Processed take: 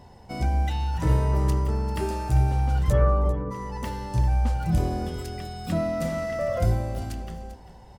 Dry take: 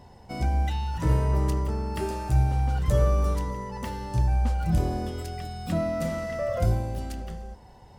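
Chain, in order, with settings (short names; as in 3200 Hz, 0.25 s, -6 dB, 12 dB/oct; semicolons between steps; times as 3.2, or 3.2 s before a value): 2.92–3.5 synth low-pass 2200 Hz -> 440 Hz, resonance Q 1.7; on a send: echo 0.395 s -14.5 dB; on the sum: gain +1 dB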